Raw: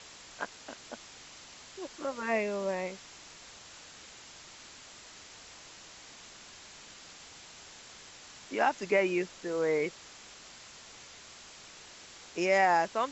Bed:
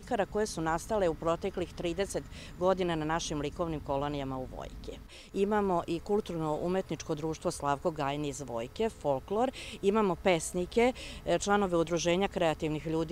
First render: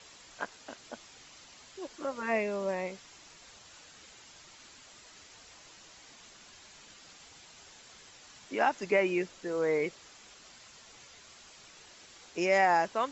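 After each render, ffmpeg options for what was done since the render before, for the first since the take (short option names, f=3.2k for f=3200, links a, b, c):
-af "afftdn=nr=6:nf=-52"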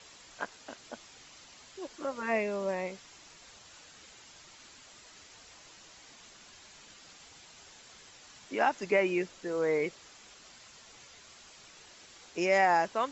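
-af anull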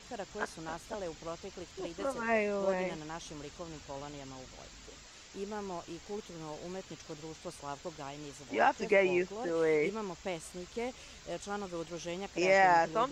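-filter_complex "[1:a]volume=-11.5dB[a];[0:a][a]amix=inputs=2:normalize=0"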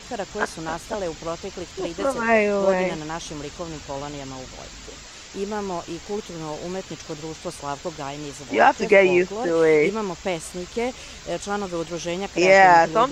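-af "volume=12dB,alimiter=limit=-2dB:level=0:latency=1"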